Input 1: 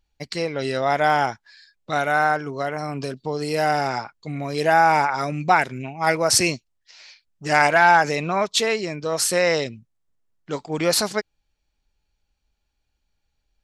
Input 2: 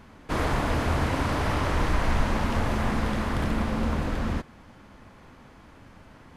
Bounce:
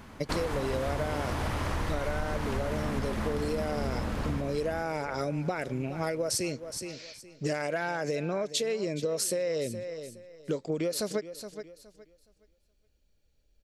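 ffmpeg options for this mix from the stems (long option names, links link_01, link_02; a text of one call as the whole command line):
ffmpeg -i stem1.wav -i stem2.wav -filter_complex "[0:a]lowshelf=frequency=670:width_type=q:width=3:gain=6,acompressor=threshold=-15dB:ratio=6,volume=-2.5dB,asplit=2[link_01][link_02];[link_02]volume=-18dB[link_03];[1:a]volume=1.5dB,asplit=2[link_04][link_05];[link_05]volume=-6dB[link_06];[link_03][link_06]amix=inputs=2:normalize=0,aecho=0:1:418|836|1254|1672:1|0.23|0.0529|0.0122[link_07];[link_01][link_04][link_07]amix=inputs=3:normalize=0,highshelf=frequency=6600:gain=7,acompressor=threshold=-28dB:ratio=6" out.wav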